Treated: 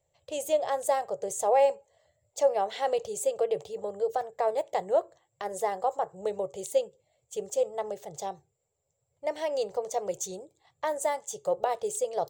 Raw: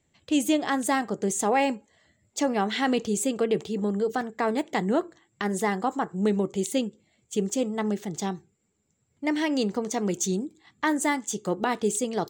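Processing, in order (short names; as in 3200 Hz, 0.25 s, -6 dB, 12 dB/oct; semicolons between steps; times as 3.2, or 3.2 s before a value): EQ curve 140 Hz 0 dB, 240 Hz -26 dB, 550 Hz +12 dB, 1500 Hz -7 dB, 15000 Hz +3 dB; gain -5.5 dB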